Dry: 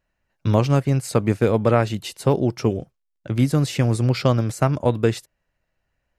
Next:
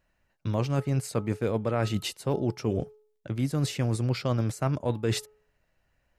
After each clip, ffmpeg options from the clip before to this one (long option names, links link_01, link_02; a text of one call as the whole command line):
ffmpeg -i in.wav -af "bandreject=frequency=426.1:width_type=h:width=4,bandreject=frequency=852.2:width_type=h:width=4,bandreject=frequency=1278.3:width_type=h:width=4,areverse,acompressor=threshold=-27dB:ratio=6,areverse,volume=2.5dB" out.wav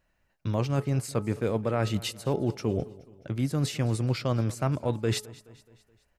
ffmpeg -i in.wav -af "aecho=1:1:212|424|636|848:0.0944|0.0481|0.0246|0.0125" out.wav